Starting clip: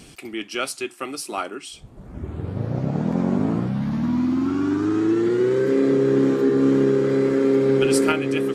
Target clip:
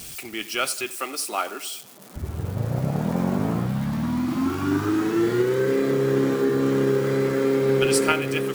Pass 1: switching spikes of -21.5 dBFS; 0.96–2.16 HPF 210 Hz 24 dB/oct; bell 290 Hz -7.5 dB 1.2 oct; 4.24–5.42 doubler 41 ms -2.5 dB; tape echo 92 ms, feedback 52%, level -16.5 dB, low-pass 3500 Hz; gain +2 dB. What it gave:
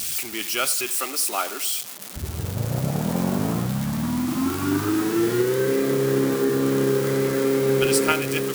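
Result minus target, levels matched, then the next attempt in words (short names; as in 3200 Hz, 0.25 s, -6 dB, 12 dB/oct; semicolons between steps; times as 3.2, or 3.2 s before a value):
switching spikes: distortion +11 dB
switching spikes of -33 dBFS; 0.96–2.16 HPF 210 Hz 24 dB/oct; bell 290 Hz -7.5 dB 1.2 oct; 4.24–5.42 doubler 41 ms -2.5 dB; tape echo 92 ms, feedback 52%, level -16.5 dB, low-pass 3500 Hz; gain +2 dB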